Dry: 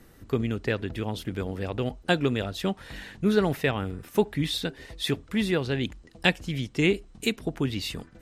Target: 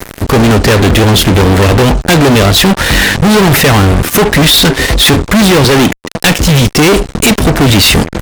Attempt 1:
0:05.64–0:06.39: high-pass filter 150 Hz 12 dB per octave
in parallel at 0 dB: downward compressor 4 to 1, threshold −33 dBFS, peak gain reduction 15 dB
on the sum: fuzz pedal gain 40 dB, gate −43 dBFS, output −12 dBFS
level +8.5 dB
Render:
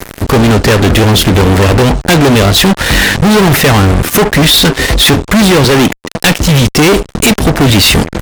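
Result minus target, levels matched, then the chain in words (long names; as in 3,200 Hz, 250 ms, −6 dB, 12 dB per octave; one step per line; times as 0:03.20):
downward compressor: peak gain reduction +8.5 dB
0:05.64–0:06.39: high-pass filter 150 Hz 12 dB per octave
in parallel at 0 dB: downward compressor 4 to 1, threshold −21.5 dBFS, peak gain reduction 6.5 dB
on the sum: fuzz pedal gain 40 dB, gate −43 dBFS, output −12 dBFS
level +8.5 dB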